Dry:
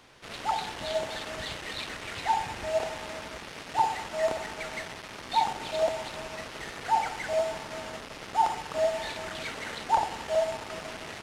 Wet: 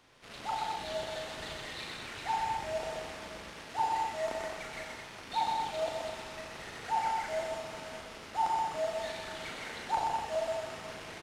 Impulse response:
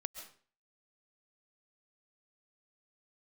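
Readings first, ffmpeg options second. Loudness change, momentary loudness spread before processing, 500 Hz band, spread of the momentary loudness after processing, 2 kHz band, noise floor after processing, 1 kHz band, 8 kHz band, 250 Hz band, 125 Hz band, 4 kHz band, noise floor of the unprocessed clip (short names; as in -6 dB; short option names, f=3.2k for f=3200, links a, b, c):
-4.5 dB, 11 LU, -6.0 dB, 11 LU, -5.0 dB, -48 dBFS, -3.5 dB, -5.0 dB, -5.0 dB, -5.0 dB, -5.0 dB, -44 dBFS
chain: -filter_complex "[0:a]asplit=2[a][b];[b]adelay=38,volume=-6.5dB[c];[a][c]amix=inputs=2:normalize=0,aecho=1:1:93.29|125.4|212.8:0.282|0.631|0.501,volume=-8dB"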